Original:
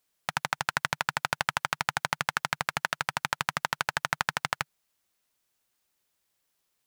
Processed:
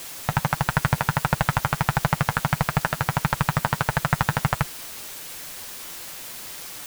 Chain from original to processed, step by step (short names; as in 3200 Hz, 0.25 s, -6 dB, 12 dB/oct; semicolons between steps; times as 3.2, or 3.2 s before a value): tilt -4.5 dB/oct; in parallel at -1 dB: requantised 6-bit, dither triangular; on the sum: flange 1.5 Hz, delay 5.6 ms, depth 3.1 ms, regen -39%; gain +4 dB